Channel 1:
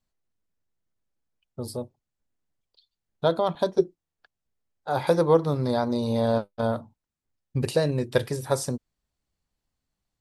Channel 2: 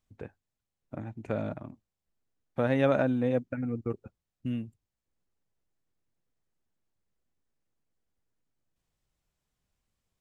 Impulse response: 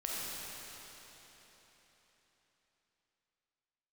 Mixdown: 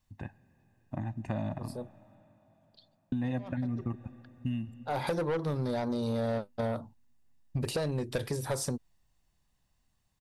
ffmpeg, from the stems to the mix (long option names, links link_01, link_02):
-filter_complex "[0:a]asoftclip=type=tanh:threshold=-20.5dB,volume=1dB[link_01];[1:a]aecho=1:1:1.1:0.92,volume=0dB,asplit=3[link_02][link_03][link_04];[link_02]atrim=end=2.15,asetpts=PTS-STARTPTS,afade=type=out:start_time=2.146:duration=0.004:curve=hsin[link_05];[link_03]atrim=start=2.15:end=3.12,asetpts=PTS-STARTPTS,volume=0[link_06];[link_04]atrim=start=3.12,asetpts=PTS-STARTPTS,afade=type=in:duration=0.004:curve=hsin[link_07];[link_05][link_06][link_07]concat=n=3:v=0:a=1,asplit=3[link_08][link_09][link_10];[link_09]volume=-20.5dB[link_11];[link_10]apad=whole_len=450024[link_12];[link_01][link_12]sidechaincompress=threshold=-47dB:ratio=12:attack=22:release=279[link_13];[2:a]atrim=start_sample=2205[link_14];[link_11][link_14]afir=irnorm=-1:irlink=0[link_15];[link_13][link_08][link_15]amix=inputs=3:normalize=0,acompressor=threshold=-29dB:ratio=6"